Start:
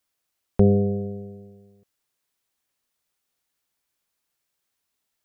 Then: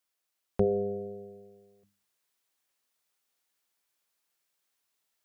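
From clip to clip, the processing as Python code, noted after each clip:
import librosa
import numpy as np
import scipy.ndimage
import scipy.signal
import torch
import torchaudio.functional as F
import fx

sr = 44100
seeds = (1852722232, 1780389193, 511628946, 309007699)

y = fx.low_shelf(x, sr, hz=220.0, db=-8.5)
y = fx.hum_notches(y, sr, base_hz=50, count=6)
y = fx.rider(y, sr, range_db=10, speed_s=2.0)
y = y * librosa.db_to_amplitude(-1.5)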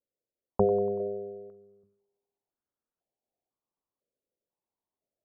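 y = fx.env_lowpass(x, sr, base_hz=430.0, full_db=-29.0)
y = fx.echo_thinned(y, sr, ms=95, feedback_pct=62, hz=200.0, wet_db=-18)
y = fx.filter_held_lowpass(y, sr, hz=2.0, low_hz=530.0, high_hz=1500.0)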